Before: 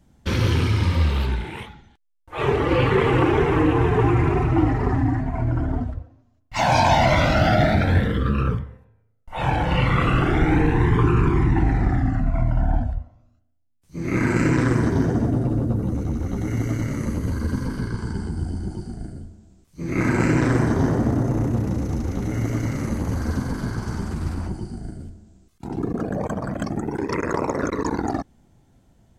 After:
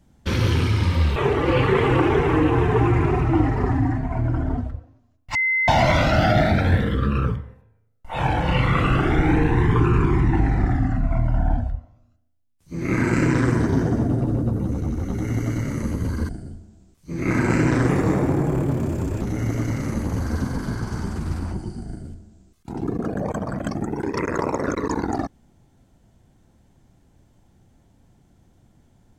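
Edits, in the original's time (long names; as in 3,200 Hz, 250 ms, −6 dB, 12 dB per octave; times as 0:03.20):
0:01.16–0:02.39: remove
0:06.58–0:06.91: beep over 2,060 Hz −17.5 dBFS
0:17.52–0:18.99: remove
0:20.59–0:22.17: play speed 119%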